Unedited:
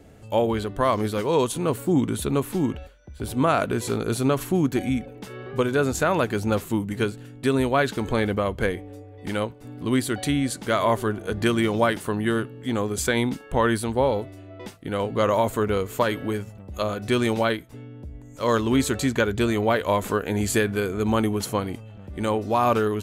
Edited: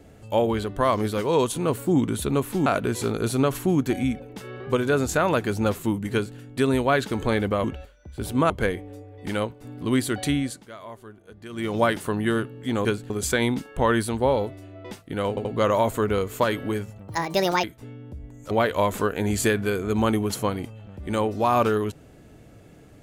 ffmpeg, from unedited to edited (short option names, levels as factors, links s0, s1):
-filter_complex "[0:a]asplit=13[s0][s1][s2][s3][s4][s5][s6][s7][s8][s9][s10][s11][s12];[s0]atrim=end=2.662[s13];[s1]atrim=start=3.518:end=8.502[s14];[s2]atrim=start=2.658:end=3.522[s15];[s3]atrim=start=8.498:end=10.67,asetpts=PTS-STARTPTS,afade=t=out:st=1.832:d=0.34:silence=0.112202[s16];[s4]atrim=start=10.67:end=11.49,asetpts=PTS-STARTPTS,volume=0.112[s17];[s5]atrim=start=11.49:end=12.852,asetpts=PTS-STARTPTS,afade=t=in:d=0.34:silence=0.112202[s18];[s6]atrim=start=6.988:end=7.242[s19];[s7]atrim=start=12.848:end=15.122[s20];[s8]atrim=start=15.038:end=15.122[s21];[s9]atrim=start=15.038:end=16.674[s22];[s10]atrim=start=16.67:end=17.55,asetpts=PTS-STARTPTS,asetrate=69678,aresample=44100,atrim=end_sample=24562,asetpts=PTS-STARTPTS[s23];[s11]atrim=start=17.546:end=18.422[s24];[s12]atrim=start=19.608[s25];[s13][s14]acrossfade=d=0.004:c1=hsin:c2=hsin[s26];[s26][s15]acrossfade=d=0.004:c1=hsin:c2=hsin[s27];[s16][s17][s18]concat=n=3:v=0:a=1[s28];[s27][s28]acrossfade=d=0.004:c1=hsin:c2=hsin[s29];[s29][s19]acrossfade=d=0.004:c1=hsin:c2=hsin[s30];[s30][s20]acrossfade=d=0.004:c1=hsin:c2=hsin[s31];[s31][s21]acrossfade=d=0.004:c1=hsin:c2=hsin[s32];[s32][s22]acrossfade=d=0.004:c1=hsin:c2=hsin[s33];[s33][s23]acrossfade=d=0.004:c1=hsin:c2=hsin[s34];[s34][s24]acrossfade=d=0.004:c1=hsin:c2=hsin[s35];[s35][s25]acrossfade=d=0.004:c1=hsin:c2=hsin"